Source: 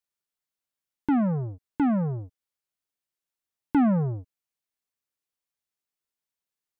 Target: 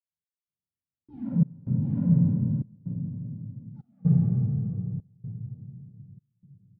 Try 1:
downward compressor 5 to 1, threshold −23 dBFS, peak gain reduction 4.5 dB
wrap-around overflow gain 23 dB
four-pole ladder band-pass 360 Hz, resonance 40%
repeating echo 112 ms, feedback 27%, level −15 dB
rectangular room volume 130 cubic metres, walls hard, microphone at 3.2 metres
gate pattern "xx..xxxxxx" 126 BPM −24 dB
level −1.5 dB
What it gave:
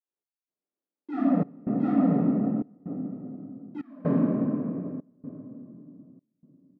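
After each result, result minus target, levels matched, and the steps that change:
500 Hz band +15.5 dB; downward compressor: peak gain reduction +4.5 dB
change: four-pole ladder band-pass 110 Hz, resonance 40%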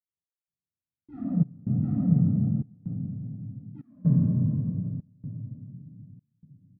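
downward compressor: peak gain reduction +4.5 dB
remove: downward compressor 5 to 1, threshold −23 dBFS, peak gain reduction 4.5 dB

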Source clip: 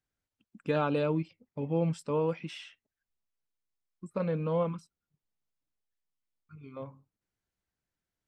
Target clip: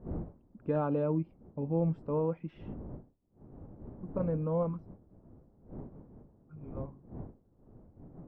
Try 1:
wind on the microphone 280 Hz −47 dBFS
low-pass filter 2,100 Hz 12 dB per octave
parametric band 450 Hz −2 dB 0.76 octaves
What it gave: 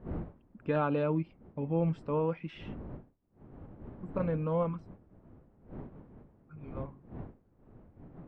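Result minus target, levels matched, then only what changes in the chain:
2,000 Hz band +9.0 dB
change: low-pass filter 880 Hz 12 dB per octave

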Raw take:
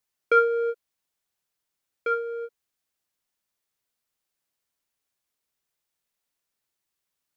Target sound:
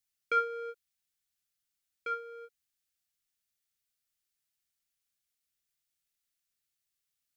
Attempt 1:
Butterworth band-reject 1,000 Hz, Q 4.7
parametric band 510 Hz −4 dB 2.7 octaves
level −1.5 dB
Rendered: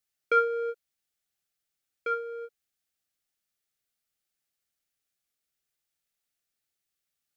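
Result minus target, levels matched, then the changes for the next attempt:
500 Hz band +4.0 dB
change: parametric band 510 Hz −13.5 dB 2.7 octaves

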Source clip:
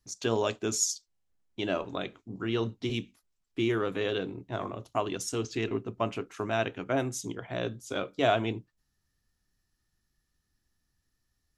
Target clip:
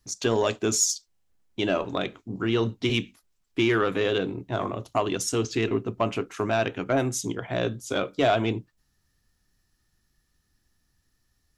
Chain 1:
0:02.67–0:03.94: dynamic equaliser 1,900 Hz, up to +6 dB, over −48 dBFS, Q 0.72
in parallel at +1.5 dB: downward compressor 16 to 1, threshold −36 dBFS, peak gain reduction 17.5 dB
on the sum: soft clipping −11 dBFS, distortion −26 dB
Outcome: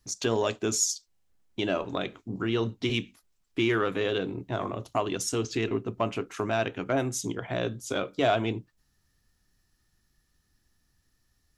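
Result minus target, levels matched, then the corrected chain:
downward compressor: peak gain reduction +11 dB
0:02.67–0:03.94: dynamic equaliser 1,900 Hz, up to +6 dB, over −48 dBFS, Q 0.72
in parallel at +1.5 dB: downward compressor 16 to 1, threshold −24.5 dBFS, peak gain reduction 6.5 dB
on the sum: soft clipping −11 dBFS, distortion −21 dB

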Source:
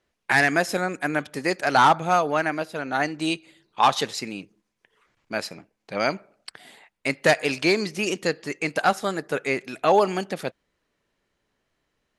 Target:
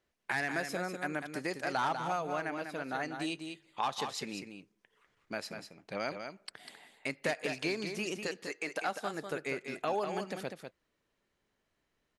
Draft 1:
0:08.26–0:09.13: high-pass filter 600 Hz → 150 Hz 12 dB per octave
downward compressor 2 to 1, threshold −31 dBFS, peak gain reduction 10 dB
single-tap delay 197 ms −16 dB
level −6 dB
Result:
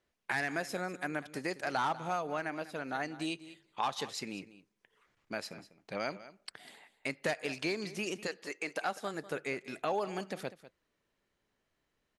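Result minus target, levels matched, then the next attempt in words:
echo-to-direct −9 dB
0:08.26–0:09.13: high-pass filter 600 Hz → 150 Hz 12 dB per octave
downward compressor 2 to 1, threshold −31 dBFS, peak gain reduction 10 dB
single-tap delay 197 ms −7 dB
level −6 dB

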